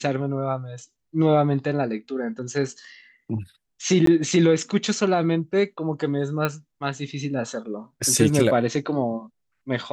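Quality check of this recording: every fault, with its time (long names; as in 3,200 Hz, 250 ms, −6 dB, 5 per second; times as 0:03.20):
0:04.06–0:04.07: drop-out 13 ms
0:06.45: click −10 dBFS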